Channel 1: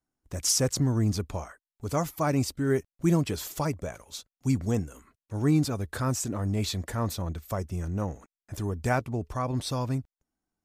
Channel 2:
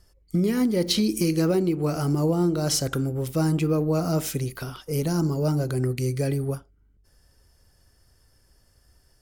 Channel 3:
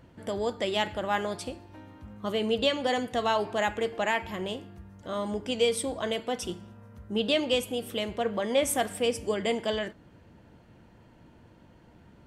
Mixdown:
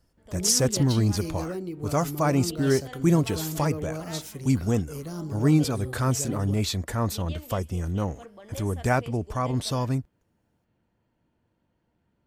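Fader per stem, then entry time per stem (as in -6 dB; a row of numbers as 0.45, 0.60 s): +3.0, -11.0, -17.5 dB; 0.00, 0.00, 0.00 s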